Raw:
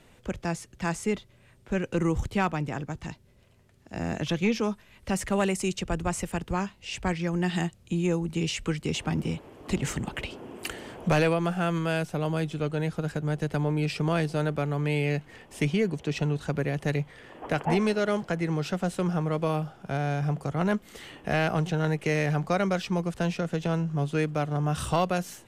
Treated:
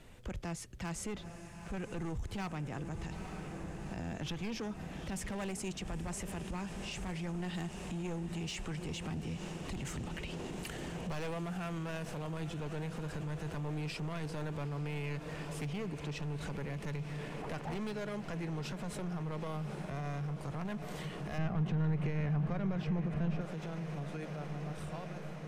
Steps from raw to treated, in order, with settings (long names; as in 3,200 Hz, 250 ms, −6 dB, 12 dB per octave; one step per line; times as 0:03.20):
fade-out on the ending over 4.90 s
hard clipping −24.5 dBFS, distortion −11 dB
feedback delay with all-pass diffusion 870 ms, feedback 79%, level −14 dB
downward compressor, threshold −31 dBFS, peak gain reduction 7 dB
low-shelf EQ 86 Hz +8 dB
brickwall limiter −30.5 dBFS, peak gain reduction 9.5 dB
0:21.38–0:23.41: bass and treble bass +9 dB, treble −13 dB
level −2 dB